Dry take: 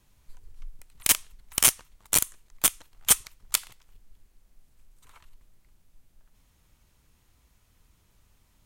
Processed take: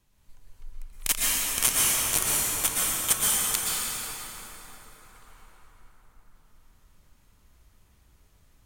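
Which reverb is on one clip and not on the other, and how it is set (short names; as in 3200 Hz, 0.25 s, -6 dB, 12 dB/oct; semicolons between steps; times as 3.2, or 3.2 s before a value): plate-style reverb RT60 4.8 s, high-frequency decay 0.55×, pre-delay 0.105 s, DRR -7 dB; gain -5 dB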